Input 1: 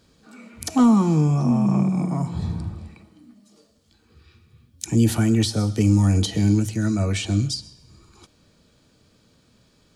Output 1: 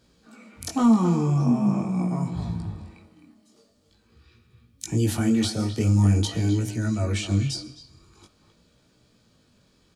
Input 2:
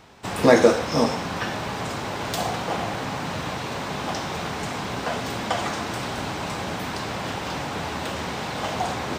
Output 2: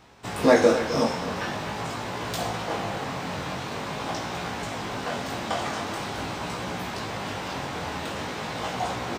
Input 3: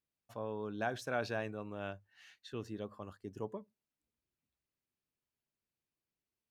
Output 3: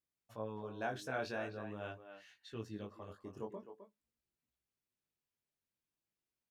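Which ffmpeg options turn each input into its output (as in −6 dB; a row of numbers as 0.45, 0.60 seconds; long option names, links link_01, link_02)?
-filter_complex "[0:a]asplit=2[link_01][link_02];[link_02]adelay=260,highpass=300,lowpass=3400,asoftclip=type=hard:threshold=-10.5dB,volume=-9dB[link_03];[link_01][link_03]amix=inputs=2:normalize=0,flanger=delay=16.5:depth=6.2:speed=0.45"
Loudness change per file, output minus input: −3.0, −2.5, −3.0 LU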